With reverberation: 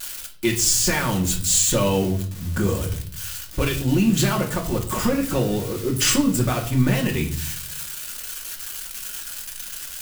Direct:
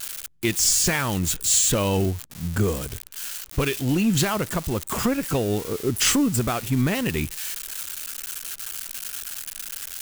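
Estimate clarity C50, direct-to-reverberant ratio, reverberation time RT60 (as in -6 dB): 11.0 dB, 0.0 dB, 0.50 s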